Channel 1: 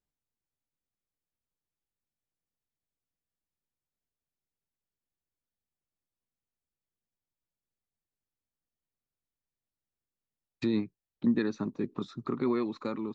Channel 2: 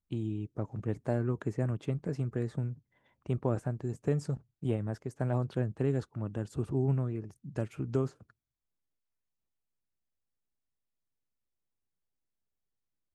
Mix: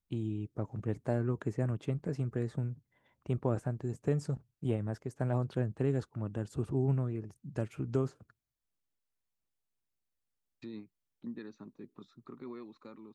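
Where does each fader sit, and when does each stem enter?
-16.0 dB, -1.0 dB; 0.00 s, 0.00 s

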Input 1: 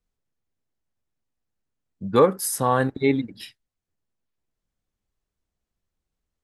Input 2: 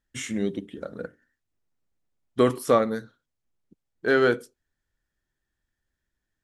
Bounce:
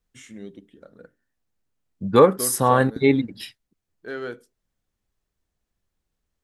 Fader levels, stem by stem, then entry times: +3.0 dB, -12.0 dB; 0.00 s, 0.00 s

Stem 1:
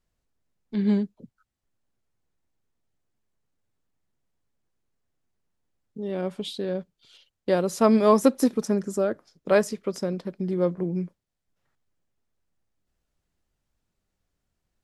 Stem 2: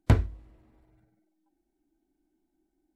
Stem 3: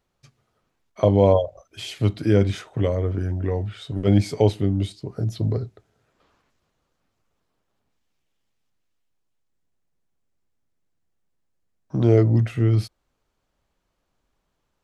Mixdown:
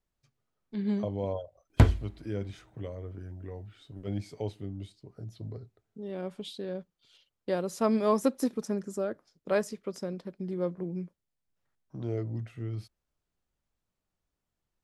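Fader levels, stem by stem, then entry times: -7.5 dB, +1.5 dB, -17.0 dB; 0.00 s, 1.70 s, 0.00 s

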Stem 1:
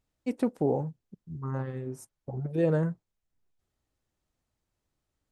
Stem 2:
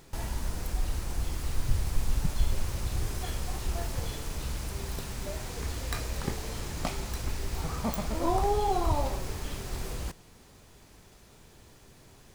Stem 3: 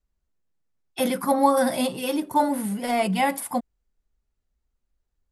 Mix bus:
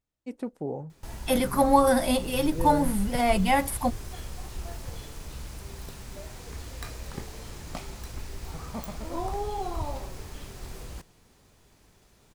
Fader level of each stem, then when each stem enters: -6.5 dB, -5.0 dB, -0.5 dB; 0.00 s, 0.90 s, 0.30 s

